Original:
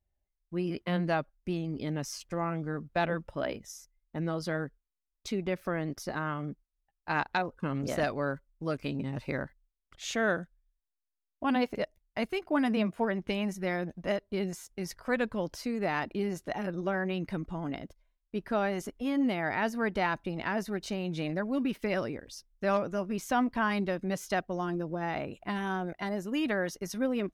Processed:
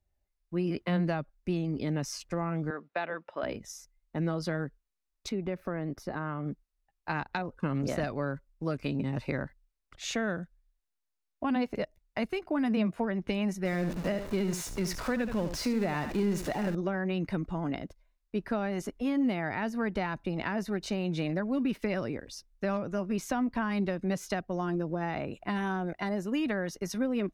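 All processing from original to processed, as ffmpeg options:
-filter_complex "[0:a]asettb=1/sr,asplit=3[a][b][c];[a]atrim=end=2.704[d];[b]atrim=start=2.7:end=3.43,asetpts=PTS-STARTPTS,afade=t=in:d=0.004:c=qsin,afade=t=out:st=0.726:d=0.004:c=qsin,highpass=380,lowpass=3.3k,tiltshelf=f=830:g=-3[e];[c]atrim=start=3.426[f];[d][e]acrossfade=d=0.004:c1=hsin:c2=qsin[g];[g][f]acrossfade=d=0.004:c1=qsin:c2=hsin,asettb=1/sr,asplit=3[h][i][j];[h]atrim=end=5.294[k];[i]atrim=start=5.29:end=6.46,asetpts=PTS-STARTPTS,afade=t=in:d=0.004:c=qsin,afade=t=out:st=1.166:d=0.004:c=qsin,equalizer=f=7k:w=0.36:g=-10,acompressor=threshold=-36dB:ratio=1.5:attack=3.2:release=140:knee=1:detection=peak[l];[j]atrim=start=6.456[m];[k][l]acrossfade=d=0.004:c1=hsin:c2=qsin[n];[n][m]acrossfade=d=0.004:c1=qsin:c2=hsin,asettb=1/sr,asplit=3[o][p][q];[o]atrim=end=13.654[r];[p]atrim=start=13.65:end=16.75,asetpts=PTS-STARTPTS,afade=t=in:d=0.004:c=qsin,afade=t=out:st=3.096:d=0.004:c=qsin,aeval=exprs='val(0)+0.5*0.015*sgn(val(0))':c=same,aecho=1:1:74:0.299,atrim=end_sample=136710[s];[q]atrim=start=16.746[t];[r][s]acrossfade=d=0.004:c1=hsin:c2=qsin[u];[u][t]acrossfade=d=0.004:c1=qsin:c2=hsin,highshelf=f=9.3k:g=-6.5,bandreject=f=3.2k:w=15,acrossover=split=240[v][w];[w]acompressor=threshold=-33dB:ratio=6[x];[v][x]amix=inputs=2:normalize=0,volume=3dB"

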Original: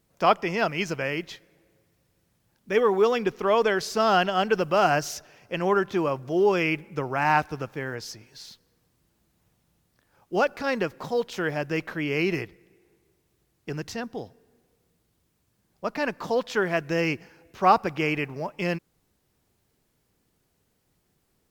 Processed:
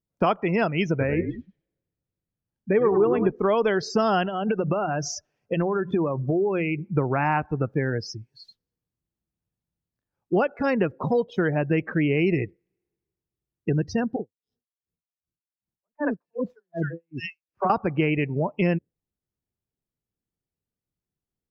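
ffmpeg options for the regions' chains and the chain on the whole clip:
-filter_complex "[0:a]asettb=1/sr,asplit=3[a][b][c];[a]atrim=end=0.904[d];[b]atrim=start=0.9:end=3.31,asetpts=PTS-STARTPTS,afade=t=in:d=0.004:c=qsin,afade=t=out:st=2.406:d=0.004:c=qsin,acrossover=split=3000[e][f];[f]acompressor=threshold=-45dB:ratio=4:attack=1:release=60[g];[e][g]amix=inputs=2:normalize=0,highshelf=f=4.1k:g=-11,asplit=5[h][i][j][k][l];[i]adelay=99,afreqshift=-49,volume=-8dB[m];[j]adelay=198,afreqshift=-98,volume=-16.6dB[n];[k]adelay=297,afreqshift=-147,volume=-25.3dB[o];[l]adelay=396,afreqshift=-196,volume=-33.9dB[p];[h][m][n][o][p]amix=inputs=5:normalize=0,atrim=end_sample=106281[q];[c]atrim=start=3.306[r];[d][q]acrossfade=d=0.004:c1=hsin:c2=qsin[s];[s][r]acrossfade=d=0.004:c1=qsin:c2=hsin,asettb=1/sr,asplit=3[t][u][v];[t]atrim=end=4.254[w];[u]atrim=start=4.25:end=6.83,asetpts=PTS-STARTPTS,afade=t=in:d=0.004:c=qsin,afade=t=out:st=2.576:d=0.004:c=qsin,bandreject=f=60:t=h:w=6,bandreject=f=120:t=h:w=6,bandreject=f=180:t=h:w=6,acompressor=threshold=-27dB:ratio=6:attack=3.2:release=140:knee=1:detection=peak[x];[v]atrim=start=6.826[y];[w][x]acrossfade=d=0.004:c1=hsin:c2=qsin[z];[z][y]acrossfade=d=0.004:c1=qsin:c2=hsin,asettb=1/sr,asplit=3[aa][ab][ac];[aa]atrim=end=14.164[ad];[ab]atrim=start=14.16:end=17.7,asetpts=PTS-STARTPTS,afade=t=in:d=0.004:c=qsin,afade=t=out:st=3.536:d=0.004:c=qsin,acrossover=split=470|2100[ae][af][ag];[ae]adelay=30[ah];[ag]adelay=260[ai];[ah][af][ai]amix=inputs=3:normalize=0,atrim=end_sample=156114,aeval=exprs='val(0)*pow(10,-38*(0.5-0.5*cos(2*PI*2.6*n/s))/20)':c=same[aj];[ac]atrim=start=17.696[ak];[ad][aj]acrossfade=d=0.004:c1=hsin:c2=qsin[al];[al][ak]acrossfade=d=0.004:c1=qsin:c2=hsin,afftdn=nr=33:nf=-34,acompressor=threshold=-35dB:ratio=2.5,lowshelf=f=390:g=8.5,volume=8dB"

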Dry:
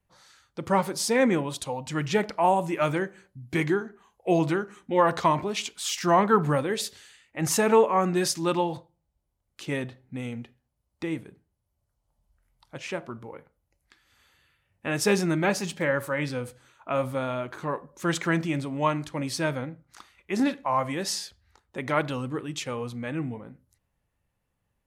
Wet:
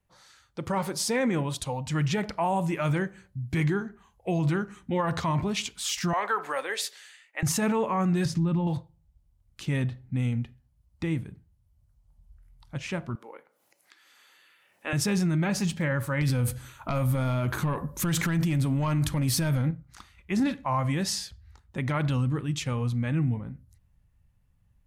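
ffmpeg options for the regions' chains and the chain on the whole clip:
-filter_complex "[0:a]asettb=1/sr,asplit=3[a][b][c];[a]atrim=end=6.134[d];[b]atrim=start=6.13:end=7.43,asetpts=PTS-STARTPTS,afade=t=in:d=0.004:c=qsin,afade=t=out:st=1.296:d=0.004:c=qsin,highpass=f=460:w=0.5412,highpass=f=460:w=1.3066,equalizer=f=1.9k:t=o:w=0.8:g=4.5[e];[c]atrim=start=7.426[f];[d][e]acrossfade=d=0.004:c1=hsin:c2=qsin[g];[g][f]acrossfade=d=0.004:c1=qsin:c2=hsin,asettb=1/sr,asplit=3[h][i][j];[h]atrim=end=8.254[k];[i]atrim=start=8.25:end=8.67,asetpts=PTS-STARTPTS,afade=t=in:d=0.004:c=qsin,afade=t=out:st=0.416:d=0.004:c=qsin,lowpass=f=2.2k:p=1,equalizer=f=150:w=0.66:g=11,acompressor=threshold=-30dB:ratio=3:attack=3.2:release=140:knee=1:detection=peak[l];[j]atrim=start=8.666[m];[k][l]acrossfade=d=0.004:c1=hsin:c2=qsin[n];[n][m]acrossfade=d=0.004:c1=qsin:c2=hsin,asettb=1/sr,asplit=3[o][p][q];[o]atrim=end=13.154[r];[p]atrim=start=13.15:end=14.93,asetpts=PTS-STARTPTS,afade=t=in:d=0.004:c=qsin,afade=t=out:st=1.776:d=0.004:c=qsin,highpass=f=350:w=0.5412,highpass=f=350:w=1.3066,acompressor=mode=upward:threshold=-50dB:ratio=2.5:attack=3.2:release=140:knee=2.83:detection=peak[s];[q]atrim=start=14.926[t];[r][s]acrossfade=d=0.004:c1=hsin:c2=qsin[u];[u][t]acrossfade=d=0.004:c1=qsin:c2=hsin,asettb=1/sr,asplit=3[v][w][x];[v]atrim=end=16.214[y];[w]atrim=start=16.21:end=19.71,asetpts=PTS-STARTPTS,afade=t=in:d=0.004:c=qsin,afade=t=out:st=3.496:d=0.004:c=qsin,equalizer=f=13k:w=1:g=14,acompressor=threshold=-28dB:ratio=6:attack=3.2:release=140:knee=1:detection=peak,aeval=exprs='0.133*sin(PI/2*1.78*val(0)/0.133)':c=same[z];[x]atrim=start=19.706[aa];[y][z]acrossfade=d=0.004:c1=hsin:c2=qsin[ab];[ab][aa]acrossfade=d=0.004:c1=qsin:c2=hsin,asubboost=boost=6:cutoff=160,alimiter=limit=-18.5dB:level=0:latency=1:release=38"

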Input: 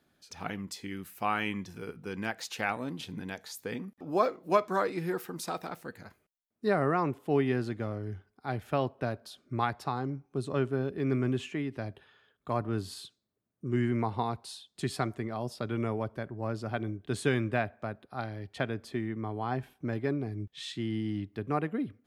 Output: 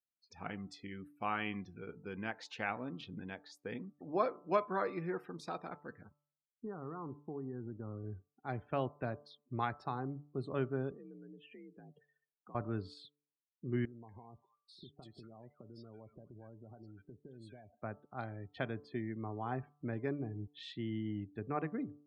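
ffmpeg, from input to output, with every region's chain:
-filter_complex "[0:a]asettb=1/sr,asplit=3[a][b][c];[a]atrim=end=6.044[d];[b]atrim=start=6.04:end=8.04,asetpts=PTS-STARTPTS,afade=t=in:d=0.004:c=qsin,afade=t=out:st=1.996:d=0.004:c=qsin,equalizer=f=620:t=o:w=0.35:g=-13,acompressor=threshold=-32dB:ratio=8:attack=3.2:release=140:knee=1:detection=peak,lowpass=f=1.3k:w=0.5412,lowpass=f=1.3k:w=1.3066[e];[c]atrim=start=8.036[f];[d][e]acrossfade=d=0.004:c1=hsin:c2=qsin[g];[g][f]acrossfade=d=0.004:c1=qsin:c2=hsin,asettb=1/sr,asplit=3[h][i][j];[h]atrim=end=10.944[k];[i]atrim=start=10.94:end=12.55,asetpts=PTS-STARTPTS,afade=t=in:d=0.004:c=qsin,afade=t=out:st=1.606:d=0.004:c=qsin,bandreject=f=570:w=6.6,acompressor=threshold=-47dB:ratio=4:attack=3.2:release=140:knee=1:detection=peak,afreqshift=51[l];[j]atrim=start=12.546[m];[k][l]acrossfade=d=0.004:c1=hsin:c2=qsin[n];[n][m]acrossfade=d=0.004:c1=qsin:c2=hsin,asettb=1/sr,asplit=3[o][p][q];[o]atrim=end=13.854[r];[p]atrim=start=13.85:end=17.73,asetpts=PTS-STARTPTS,afade=t=in:d=0.004:c=qsin,afade=t=out:st=3.876:d=0.004:c=qsin,acompressor=threshold=-43dB:ratio=8:attack=3.2:release=140:knee=1:detection=peak,acrossover=split=1300[s][t];[t]adelay=240[u];[s][u]amix=inputs=2:normalize=0,atrim=end_sample=171108[v];[q]atrim=start=17.726[w];[r][v]acrossfade=d=0.004:c1=hsin:c2=qsin[x];[x][w]acrossfade=d=0.004:c1=qsin:c2=hsin,afftdn=nr=33:nf=-50,lowpass=4.2k,bandreject=f=146.3:t=h:w=4,bandreject=f=292.6:t=h:w=4,bandreject=f=438.9:t=h:w=4,bandreject=f=585.2:t=h:w=4,bandreject=f=731.5:t=h:w=4,bandreject=f=877.8:t=h:w=4,bandreject=f=1.0241k:t=h:w=4,bandreject=f=1.1704k:t=h:w=4,bandreject=f=1.3167k:t=h:w=4,volume=-6dB"

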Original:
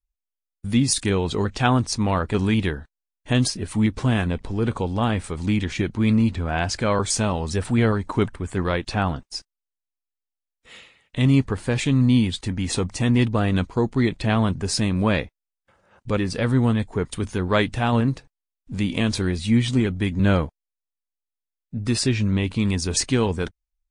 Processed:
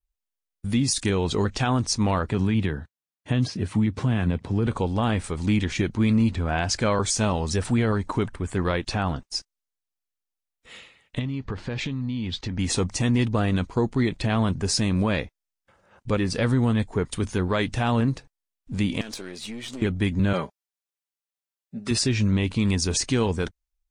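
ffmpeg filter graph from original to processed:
-filter_complex "[0:a]asettb=1/sr,asplit=3[a][b][c];[a]atrim=end=2.294[d];[b]atrim=start=2.29:end=4.67,asetpts=PTS-STARTPTS,afade=t=in:d=0.004:c=qsin,afade=t=out:st=2.376:d=0.004:c=qsin,bass=f=250:g=5,treble=f=4k:g=-3,acrossover=split=4200[e][f];[f]acompressor=threshold=-46dB:ratio=4:attack=1:release=60[g];[e][g]amix=inputs=2:normalize=0,highpass=f=81:w=0.5412,highpass=f=81:w=1.3066[h];[c]atrim=start=4.666[i];[d][h]acrossfade=d=0.004:c1=hsin:c2=qsin[j];[j][i]acrossfade=d=0.004:c1=qsin:c2=hsin,asettb=1/sr,asplit=3[k][l][m];[k]atrim=end=11.194[n];[l]atrim=start=11.19:end=12.59,asetpts=PTS-STARTPTS,afade=t=in:d=0.004:c=qsin,afade=t=out:st=1.396:d=0.004:c=qsin,lowpass=f=5.5k:w=0.5412,lowpass=f=5.5k:w=1.3066,acompressor=threshold=-25dB:ratio=10:attack=3.2:release=140:knee=1:detection=peak[o];[m]atrim=start=12.586[p];[n][o]acrossfade=d=0.004:c1=hsin:c2=qsin[q];[q][p]acrossfade=d=0.004:c1=qsin:c2=hsin,asettb=1/sr,asplit=3[r][s][t];[r]atrim=end=19.014[u];[s]atrim=start=19.01:end=19.82,asetpts=PTS-STARTPTS,afade=t=in:d=0.004:c=qsin,afade=t=out:st=0.806:d=0.004:c=qsin,highpass=340,aeval=exprs='(tanh(12.6*val(0)+0.6)-tanh(0.6))/12.6':c=same,acompressor=threshold=-31dB:ratio=6:attack=3.2:release=140:knee=1:detection=peak[v];[t]atrim=start=19.816[w];[u][v]acrossfade=d=0.004:c1=hsin:c2=qsin[x];[x][w]acrossfade=d=0.004:c1=qsin:c2=hsin,asettb=1/sr,asplit=3[y][z][aa];[y]atrim=end=20.334[ab];[z]atrim=start=20.33:end=21.91,asetpts=PTS-STARTPTS,afade=t=in:d=0.004:c=qsin,afade=t=out:st=1.576:d=0.004:c=qsin,highpass=f=390:p=1,aecho=1:1:5.1:0.74,atrim=end_sample=69678[ac];[aa]atrim=start=21.906[ad];[ab][ac]acrossfade=d=0.004:c1=hsin:c2=qsin[ae];[ae][ad]acrossfade=d=0.004:c1=qsin:c2=hsin,adynamicequalizer=threshold=0.00891:dfrequency=6000:dqfactor=1.8:tfrequency=6000:tqfactor=1.8:attack=5:release=100:ratio=0.375:range=2.5:mode=boostabove:tftype=bell,alimiter=limit=-13.5dB:level=0:latency=1:release=95"

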